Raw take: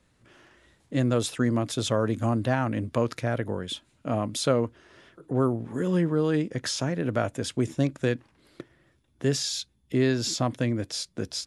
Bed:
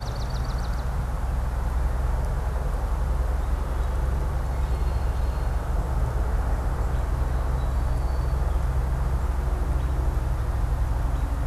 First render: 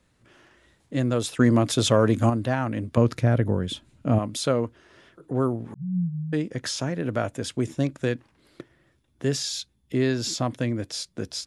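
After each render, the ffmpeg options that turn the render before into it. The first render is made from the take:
-filter_complex "[0:a]asettb=1/sr,asplit=3[s0][s1][s2];[s0]atrim=end=1.394[s3];[s1]atrim=start=1.39:end=2.3,asetpts=PTS-STARTPTS,afade=t=in:d=0.004:c=qsin,afade=t=out:st=0.906:d=0.004:c=qsin,acontrast=58[s4];[s2]atrim=start=2.296[s5];[s3][s4]acrossfade=d=0.004:c1=hsin:c2=qsin[s6];[s6][s5]acrossfade=d=0.004:c1=qsin:c2=hsin,asettb=1/sr,asplit=3[s7][s8][s9];[s7]atrim=end=2.974[s10];[s8]atrim=start=2.97:end=4.19,asetpts=PTS-STARTPTS,afade=t=in:d=0.004:c=qsin,afade=t=out:st=1.216:d=0.004:c=qsin,lowshelf=f=310:g=11.5[s11];[s9]atrim=start=4.186[s12];[s10][s11]acrossfade=d=0.004:c1=hsin:c2=qsin[s13];[s13][s12]acrossfade=d=0.004:c1=qsin:c2=hsin,asettb=1/sr,asplit=3[s14][s15][s16];[s14]atrim=end=5.744[s17];[s15]atrim=start=5.74:end=6.33,asetpts=PTS-STARTPTS,afade=t=in:d=0.004:c=qsin,afade=t=out:st=0.586:d=0.004:c=qsin,asuperpass=centerf=160:order=12:qfactor=2.5[s18];[s16]atrim=start=6.326[s19];[s17][s18]acrossfade=d=0.004:c1=hsin:c2=qsin[s20];[s20][s19]acrossfade=d=0.004:c1=qsin:c2=hsin"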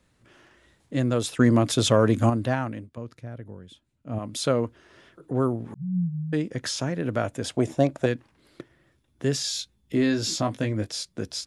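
-filter_complex "[0:a]asettb=1/sr,asplit=3[s0][s1][s2];[s0]atrim=end=7.444[s3];[s1]atrim=start=7.44:end=8.06,asetpts=PTS-STARTPTS,afade=t=in:d=0.004:c=qsin,afade=t=out:st=0.616:d=0.004:c=qsin,equalizer=f=690:w=1.5:g=14[s4];[s2]atrim=start=8.056[s5];[s3][s4]acrossfade=d=0.004:c1=hsin:c2=qsin[s6];[s6][s5]acrossfade=d=0.004:c1=qsin:c2=hsin,asettb=1/sr,asplit=3[s7][s8][s9];[s7]atrim=end=9.424[s10];[s8]atrim=start=9.42:end=10.88,asetpts=PTS-STARTPTS,afade=t=in:d=0.004:c=qsin,afade=t=out:st=1.456:d=0.004:c=qsin,asplit=2[s11][s12];[s12]adelay=19,volume=0.531[s13];[s11][s13]amix=inputs=2:normalize=0,atrim=end_sample=64386[s14];[s9]atrim=start=10.876[s15];[s10][s14]acrossfade=d=0.004:c1=hsin:c2=qsin[s16];[s16][s15]acrossfade=d=0.004:c1=qsin:c2=hsin,asplit=3[s17][s18][s19];[s17]atrim=end=2.9,asetpts=PTS-STARTPTS,afade=t=out:st=2.53:d=0.37:silence=0.133352[s20];[s18]atrim=start=2.9:end=4.06,asetpts=PTS-STARTPTS,volume=0.133[s21];[s19]atrim=start=4.06,asetpts=PTS-STARTPTS,afade=t=in:d=0.37:silence=0.133352[s22];[s20][s21][s22]concat=n=3:v=0:a=1"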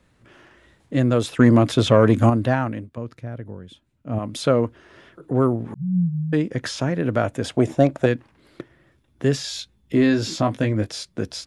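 -filter_complex "[0:a]acrossover=split=3300[s0][s1];[s0]acontrast=37[s2];[s1]alimiter=level_in=1.19:limit=0.0631:level=0:latency=1:release=211,volume=0.841[s3];[s2][s3]amix=inputs=2:normalize=0"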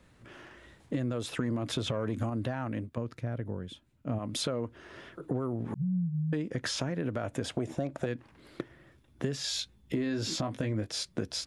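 -af "alimiter=limit=0.2:level=0:latency=1:release=141,acompressor=threshold=0.0355:ratio=6"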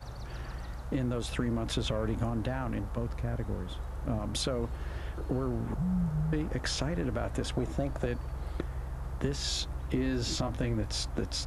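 -filter_complex "[1:a]volume=0.224[s0];[0:a][s0]amix=inputs=2:normalize=0"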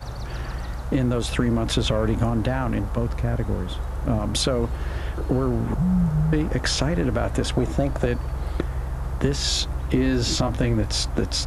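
-af "volume=2.99"

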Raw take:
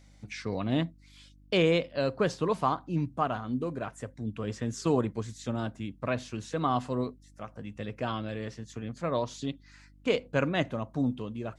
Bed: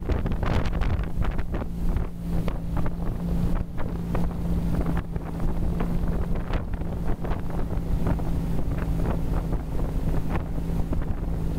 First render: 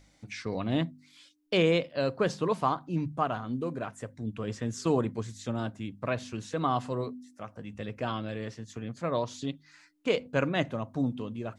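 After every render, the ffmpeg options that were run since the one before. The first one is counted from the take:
-af "bandreject=f=50:t=h:w=4,bandreject=f=100:t=h:w=4,bandreject=f=150:t=h:w=4,bandreject=f=200:t=h:w=4,bandreject=f=250:t=h:w=4"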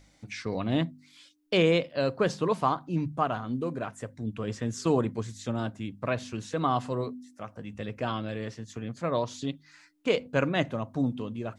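-af "volume=1.19"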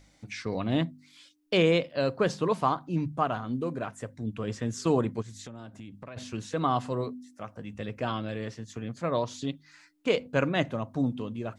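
-filter_complex "[0:a]asplit=3[s0][s1][s2];[s0]afade=t=out:st=5.21:d=0.02[s3];[s1]acompressor=threshold=0.0112:ratio=8:attack=3.2:release=140:knee=1:detection=peak,afade=t=in:st=5.21:d=0.02,afade=t=out:st=6.16:d=0.02[s4];[s2]afade=t=in:st=6.16:d=0.02[s5];[s3][s4][s5]amix=inputs=3:normalize=0"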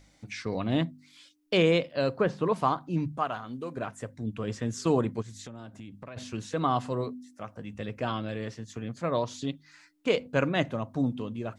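-filter_complex "[0:a]asettb=1/sr,asplit=3[s0][s1][s2];[s0]atrim=end=2.094[s3];[s1]atrim=start=2.09:end=2.56,asetpts=PTS-STARTPTS,afade=t=in:d=0.004:c=qsin,afade=t=out:st=0.466:d=0.004:c=qsin,acrossover=split=2700[s4][s5];[s5]acompressor=threshold=0.00158:ratio=4:attack=1:release=60[s6];[s4][s6]amix=inputs=2:normalize=0[s7];[s2]atrim=start=2.556[s8];[s3][s7]acrossfade=d=0.004:c1=hsin:c2=qsin[s9];[s9][s8]acrossfade=d=0.004:c1=qsin:c2=hsin,asettb=1/sr,asplit=3[s10][s11][s12];[s10]atrim=end=3.184[s13];[s11]atrim=start=3.18:end=3.77,asetpts=PTS-STARTPTS,afade=t=in:d=0.004:c=qsin,afade=t=out:st=0.586:d=0.004:c=qsin,lowshelf=f=490:g=-9[s14];[s12]atrim=start=3.766[s15];[s13][s14]acrossfade=d=0.004:c1=hsin:c2=qsin[s16];[s16][s15]acrossfade=d=0.004:c1=qsin:c2=hsin"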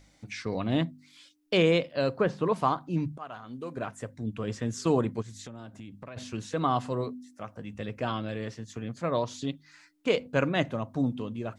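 -filter_complex "[0:a]asplit=2[s0][s1];[s0]atrim=end=3.18,asetpts=PTS-STARTPTS,afade=t=out:st=3.176:d=0.004:c=hsin:silence=0.158489[s2];[s1]atrim=start=3.18,asetpts=PTS-STARTPTS,afade=t=in:d=0.73:c=qsin:silence=0.158489[s3];[s2][s3]concat=n=2:v=0:a=1"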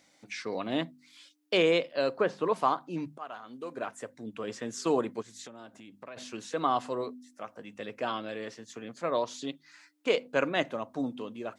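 -af "highpass=310"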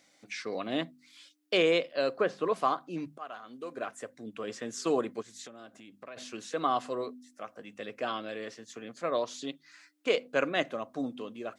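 -af "lowshelf=f=150:g=-7.5,bandreject=f=910:w=6.7"

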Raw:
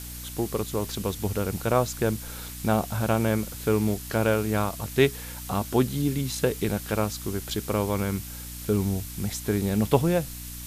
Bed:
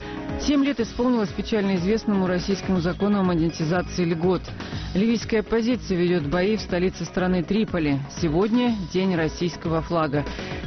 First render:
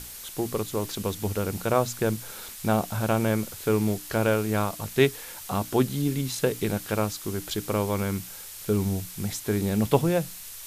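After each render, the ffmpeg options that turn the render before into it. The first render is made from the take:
-af "bandreject=f=60:t=h:w=6,bandreject=f=120:t=h:w=6,bandreject=f=180:t=h:w=6,bandreject=f=240:t=h:w=6,bandreject=f=300:t=h:w=6"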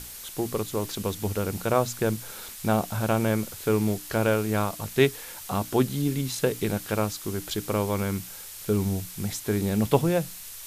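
-af anull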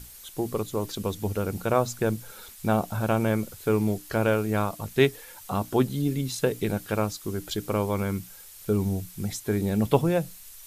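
-af "afftdn=nr=8:nf=-41"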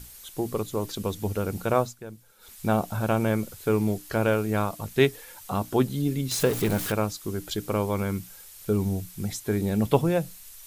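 -filter_complex "[0:a]asettb=1/sr,asplit=3[s0][s1][s2];[s0]atrim=end=6.314[s3];[s1]atrim=start=6.31:end=6.92,asetpts=PTS-STARTPTS,afade=t=in:d=0.004:c=qsin,afade=t=out:st=0.606:d=0.004:c=qsin,aeval=exprs='val(0)+0.5*0.0422*sgn(val(0))':c=same[s4];[s2]atrim=start=6.916[s5];[s3][s4]acrossfade=d=0.004:c1=hsin:c2=qsin[s6];[s6][s5]acrossfade=d=0.004:c1=qsin:c2=hsin,asplit=3[s7][s8][s9];[s7]atrim=end=1.95,asetpts=PTS-STARTPTS,afade=t=out:st=1.8:d=0.15:silence=0.177828[s10];[s8]atrim=start=1.95:end=2.39,asetpts=PTS-STARTPTS,volume=0.178[s11];[s9]atrim=start=2.39,asetpts=PTS-STARTPTS,afade=t=in:d=0.15:silence=0.177828[s12];[s10][s11][s12]concat=n=3:v=0:a=1"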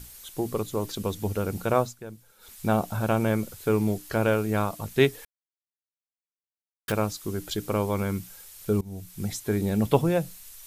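-filter_complex "[0:a]asplit=4[s0][s1][s2][s3];[s0]atrim=end=5.25,asetpts=PTS-STARTPTS,afade=t=out:st=5.246:d=0.004:c=hsin[s4];[s1]atrim=start=5.25:end=6.88,asetpts=PTS-STARTPTS,volume=0[s5];[s2]atrim=start=6.88:end=8.81,asetpts=PTS-STARTPTS,afade=t=in:d=0.004:c=hsin,afade=t=out:st=1.926:d=0.004:c=hsin:silence=0.0668344[s6];[s3]atrim=start=8.81,asetpts=PTS-STARTPTS,afade=t=in:d=0.43:silence=0.0668344[s7];[s4][s5][s6][s7]concat=n=4:v=0:a=1"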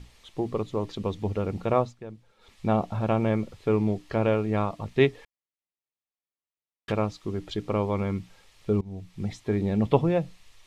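-af "lowpass=3200,bandreject=f=1500:w=5"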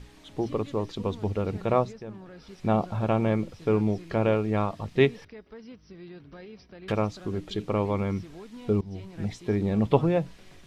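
-filter_complex "[1:a]volume=0.0668[s0];[0:a][s0]amix=inputs=2:normalize=0"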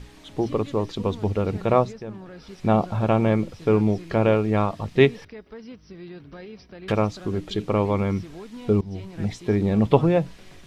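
-af "volume=1.68,alimiter=limit=0.708:level=0:latency=1"

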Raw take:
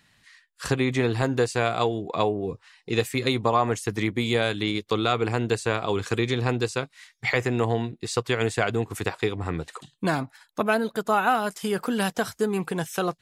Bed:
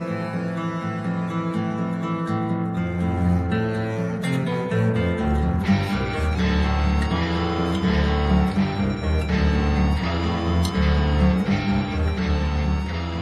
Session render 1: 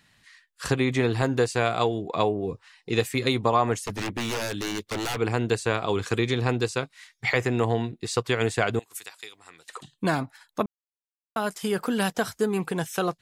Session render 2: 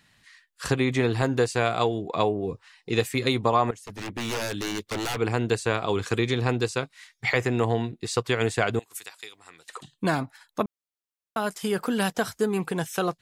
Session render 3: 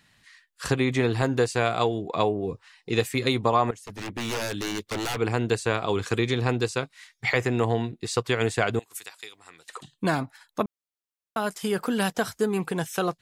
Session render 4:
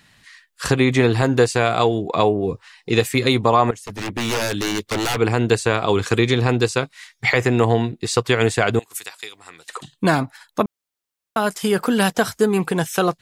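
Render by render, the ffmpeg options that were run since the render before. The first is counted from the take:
-filter_complex "[0:a]asettb=1/sr,asplit=3[s0][s1][s2];[s0]atrim=end=3.824[s3];[s1]atrim=start=3.82:end=5.17,asetpts=PTS-STARTPTS,afade=t=in:d=0.004:c=qsin,afade=t=out:st=1.346:d=0.004:c=qsin,aeval=exprs='0.0668*(abs(mod(val(0)/0.0668+3,4)-2)-1)':c=same[s4];[s2]atrim=start=5.166[s5];[s3][s4]acrossfade=d=0.004:c1=hsin:c2=qsin[s6];[s6][s5]acrossfade=d=0.004:c1=qsin:c2=hsin,asettb=1/sr,asplit=3[s7][s8][s9];[s7]atrim=end=8.794[s10];[s8]atrim=start=8.79:end=9.69,asetpts=PTS-STARTPTS,afade=t=in:d=0.004:c=qsin,afade=t=out:st=0.896:d=0.004:c=qsin,aderivative[s11];[s9]atrim=start=9.686[s12];[s10][s11]acrossfade=d=0.004:c1=hsin:c2=qsin[s13];[s13][s12]acrossfade=d=0.004:c1=qsin:c2=hsin,asplit=3[s14][s15][s16];[s14]atrim=end=10.66,asetpts=PTS-STARTPTS,afade=t=out:st=10.656:d=0.004:c=hsin[s17];[s15]atrim=start=10.66:end=11.36,asetpts=PTS-STARTPTS,volume=0[s18];[s16]atrim=start=11.36,asetpts=PTS-STARTPTS,afade=t=in:d=0.004:c=hsin[s19];[s17][s18][s19]concat=n=3:v=0:a=1"
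-filter_complex "[0:a]asplit=2[s0][s1];[s0]atrim=end=3.71,asetpts=PTS-STARTPTS,afade=t=out:st=3.706:d=0.004:c=hsin:silence=0.141254[s2];[s1]atrim=start=3.71,asetpts=PTS-STARTPTS,afade=t=in:d=0.64:silence=0.141254[s3];[s2][s3]concat=n=2:v=0:a=1"
-af anull
-af "volume=2.37,alimiter=limit=0.708:level=0:latency=1"

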